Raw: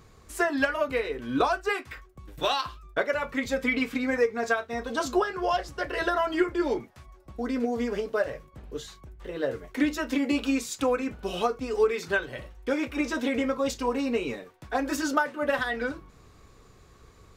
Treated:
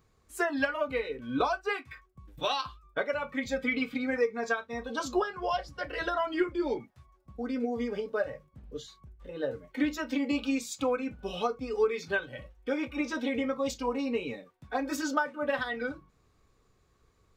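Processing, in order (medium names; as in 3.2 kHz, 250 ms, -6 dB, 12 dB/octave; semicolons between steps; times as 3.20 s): spectral noise reduction 10 dB; trim -3.5 dB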